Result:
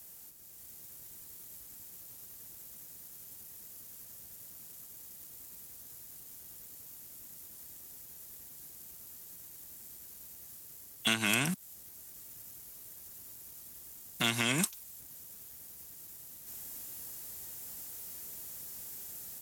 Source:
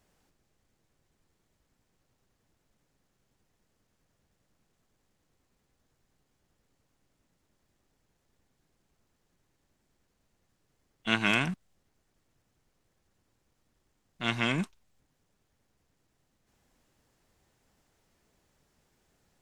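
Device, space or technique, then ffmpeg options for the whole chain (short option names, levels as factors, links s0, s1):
FM broadcast chain: -filter_complex "[0:a]highpass=45,dynaudnorm=f=340:g=3:m=2.24,acrossover=split=200|540[s0][s1][s2];[s0]acompressor=threshold=0.00891:ratio=4[s3];[s1]acompressor=threshold=0.0126:ratio=4[s4];[s2]acompressor=threshold=0.0282:ratio=4[s5];[s3][s4][s5]amix=inputs=3:normalize=0,aemphasis=mode=production:type=50fm,alimiter=limit=0.0891:level=0:latency=1:release=330,asoftclip=type=hard:threshold=0.0668,lowpass=f=15000:w=0.5412,lowpass=f=15000:w=1.3066,aemphasis=mode=production:type=50fm,volume=1.78"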